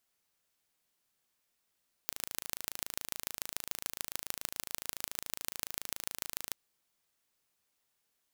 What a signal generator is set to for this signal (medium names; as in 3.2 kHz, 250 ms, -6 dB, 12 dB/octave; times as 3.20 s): pulse train 27.1 per s, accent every 4, -6 dBFS 4.46 s